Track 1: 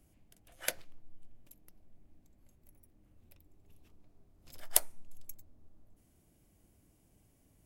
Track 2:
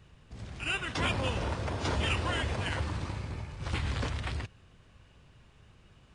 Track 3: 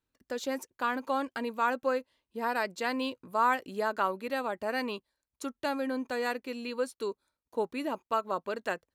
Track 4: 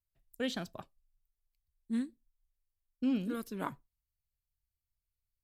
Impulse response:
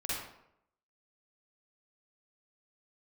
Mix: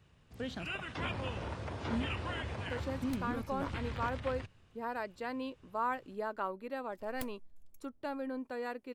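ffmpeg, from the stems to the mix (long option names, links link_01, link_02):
-filter_complex "[0:a]highshelf=frequency=4800:gain=-8.5,aeval=exprs='abs(val(0))':channel_layout=same,adelay=2450,volume=-10dB[link_01];[1:a]highpass=60,acrossover=split=3500[link_02][link_03];[link_03]acompressor=threshold=-53dB:ratio=4:attack=1:release=60[link_04];[link_02][link_04]amix=inputs=2:normalize=0,volume=-6.5dB[link_05];[2:a]highshelf=frequency=2100:gain=-10,bandreject=frequency=6500:width=6.8,adelay=2400,volume=-6dB[link_06];[3:a]lowpass=frequency=3700:poles=1,alimiter=level_in=2.5dB:limit=-24dB:level=0:latency=1:release=253,volume=-2.5dB,volume=-2.5dB[link_07];[link_01][link_05][link_06][link_07]amix=inputs=4:normalize=0"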